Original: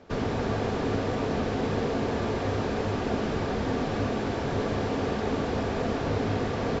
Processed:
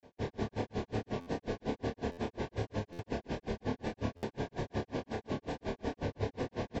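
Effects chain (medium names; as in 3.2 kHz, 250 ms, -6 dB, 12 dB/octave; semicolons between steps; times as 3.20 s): granulator 101 ms, grains 5.5 per s, pitch spread up and down by 0 st; vibrato 2.4 Hz 63 cents; Butterworth band-stop 1.3 kHz, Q 3.9; doubling 28 ms -4.5 dB; delay 144 ms -18.5 dB; buffer glitch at 1.20/2.11/2.92/4.16 s, samples 512, times 5; trim -4.5 dB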